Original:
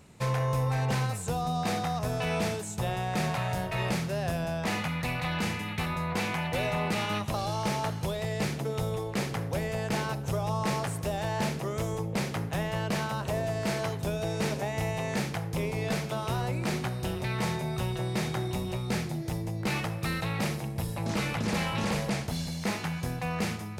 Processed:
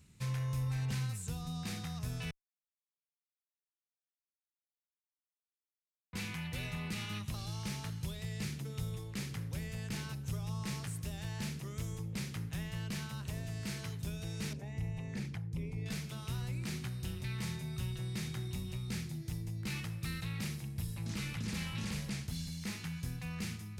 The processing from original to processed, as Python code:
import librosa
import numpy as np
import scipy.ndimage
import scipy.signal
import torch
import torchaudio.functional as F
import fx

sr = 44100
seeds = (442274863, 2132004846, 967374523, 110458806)

y = fx.envelope_sharpen(x, sr, power=1.5, at=(14.53, 15.86))
y = fx.edit(y, sr, fx.silence(start_s=2.31, length_s=3.82), tone=tone)
y = fx.tone_stack(y, sr, knobs='6-0-2')
y = y * 10.0 ** (8.5 / 20.0)